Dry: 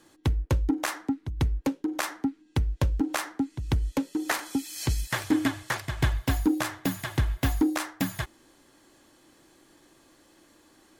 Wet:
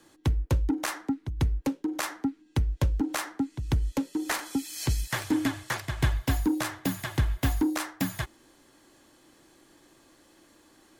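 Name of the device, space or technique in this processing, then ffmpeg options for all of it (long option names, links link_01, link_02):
one-band saturation: -filter_complex "[0:a]acrossover=split=220|4200[link_01][link_02][link_03];[link_02]asoftclip=type=tanh:threshold=-21.5dB[link_04];[link_01][link_04][link_03]amix=inputs=3:normalize=0"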